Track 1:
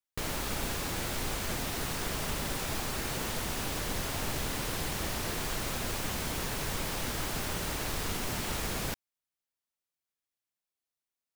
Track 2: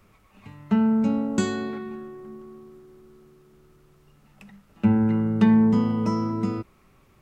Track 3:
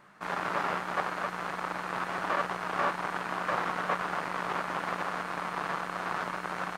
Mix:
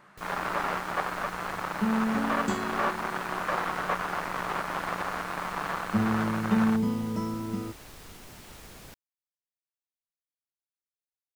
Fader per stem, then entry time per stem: -13.5 dB, -7.0 dB, +1.0 dB; 0.00 s, 1.10 s, 0.00 s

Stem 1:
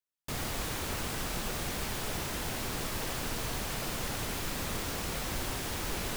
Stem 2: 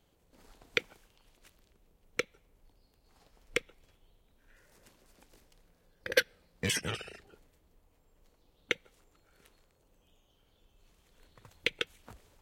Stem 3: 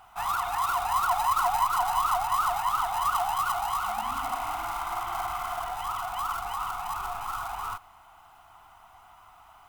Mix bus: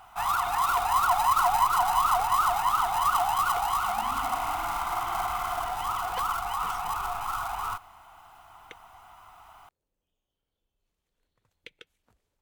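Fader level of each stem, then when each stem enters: -15.5 dB, -16.5 dB, +2.0 dB; 0.15 s, 0.00 s, 0.00 s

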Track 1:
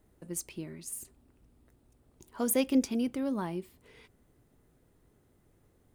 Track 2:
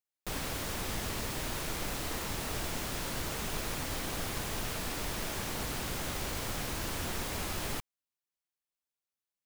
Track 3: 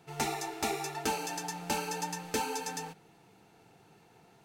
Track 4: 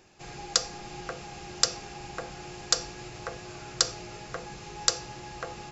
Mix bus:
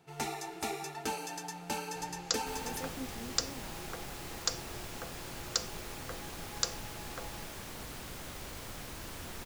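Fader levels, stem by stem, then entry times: -17.0 dB, -8.0 dB, -4.0 dB, -8.0 dB; 0.25 s, 2.20 s, 0.00 s, 1.75 s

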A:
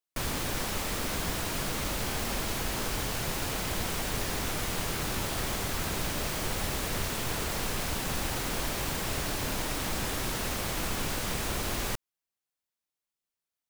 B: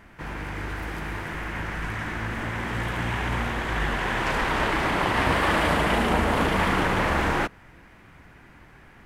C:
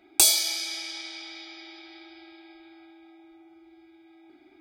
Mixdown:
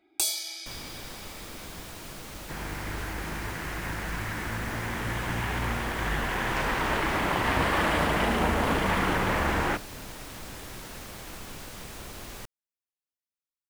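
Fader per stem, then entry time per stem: -9.5 dB, -3.0 dB, -9.0 dB; 0.50 s, 2.30 s, 0.00 s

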